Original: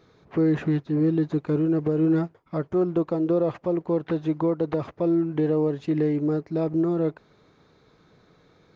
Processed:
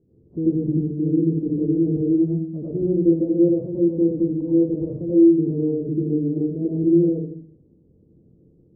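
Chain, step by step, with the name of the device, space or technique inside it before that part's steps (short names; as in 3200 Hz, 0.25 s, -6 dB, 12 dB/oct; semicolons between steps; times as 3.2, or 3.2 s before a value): next room (LPF 380 Hz 24 dB/oct; reverb RT60 0.55 s, pre-delay 80 ms, DRR -6.5 dB); gain -2.5 dB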